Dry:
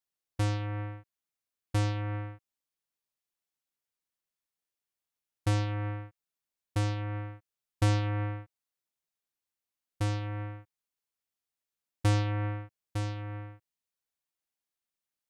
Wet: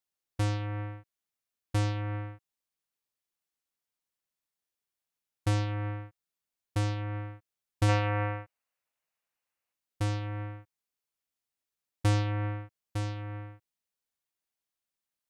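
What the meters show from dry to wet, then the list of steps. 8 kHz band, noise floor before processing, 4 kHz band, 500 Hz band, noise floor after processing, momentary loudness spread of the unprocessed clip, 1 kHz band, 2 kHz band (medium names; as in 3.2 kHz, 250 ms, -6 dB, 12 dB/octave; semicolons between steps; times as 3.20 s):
0.0 dB, under -85 dBFS, +0.5 dB, +1.5 dB, under -85 dBFS, 15 LU, +2.0 dB, +2.0 dB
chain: time-frequency box 7.89–9.74 s, 470–3000 Hz +7 dB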